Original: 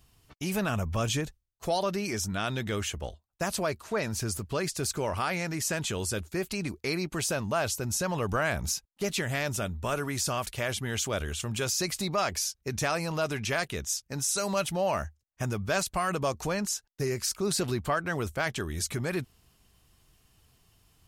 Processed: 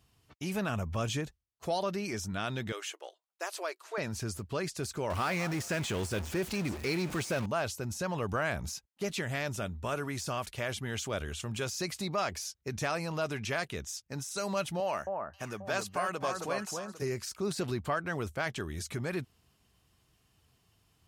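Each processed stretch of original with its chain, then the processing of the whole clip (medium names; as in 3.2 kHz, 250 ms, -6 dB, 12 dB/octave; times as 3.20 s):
2.72–3.98 s: brick-wall FIR high-pass 300 Hz + bass shelf 410 Hz -11 dB
5.10–7.46 s: jump at every zero crossing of -31 dBFS + repeats whose band climbs or falls 208 ms, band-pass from 900 Hz, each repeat 1.4 oct, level -11 dB
14.80–17.02 s: high-pass 370 Hz 6 dB/octave + echo whose repeats swap between lows and highs 267 ms, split 1.5 kHz, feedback 51%, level -3 dB
whole clip: high-pass 61 Hz; de-esser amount 55%; treble shelf 7.4 kHz -6 dB; trim -3.5 dB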